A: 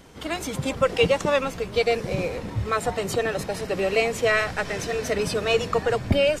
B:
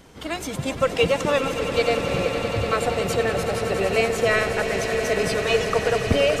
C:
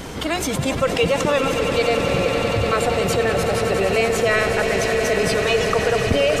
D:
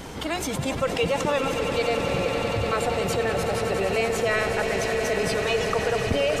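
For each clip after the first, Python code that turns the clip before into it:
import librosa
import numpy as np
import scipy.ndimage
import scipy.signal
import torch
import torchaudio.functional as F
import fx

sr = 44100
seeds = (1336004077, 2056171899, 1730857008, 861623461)

y1 = fx.echo_swell(x, sr, ms=94, loudest=8, wet_db=-13)
y2 = fx.env_flatten(y1, sr, amount_pct=50)
y3 = fx.peak_eq(y2, sr, hz=860.0, db=4.5, octaves=0.23)
y3 = F.gain(torch.from_numpy(y3), -5.5).numpy()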